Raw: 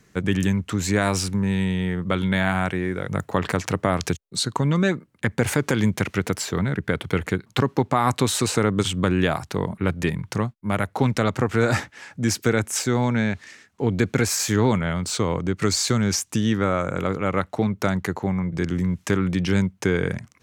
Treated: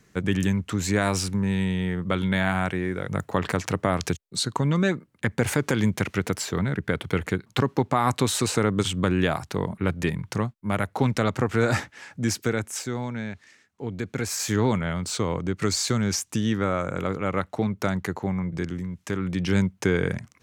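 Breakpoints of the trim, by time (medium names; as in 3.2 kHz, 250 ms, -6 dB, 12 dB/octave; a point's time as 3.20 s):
12.17 s -2 dB
13.12 s -10 dB
14.06 s -10 dB
14.50 s -3 dB
18.55 s -3 dB
18.90 s -10 dB
19.58 s -1 dB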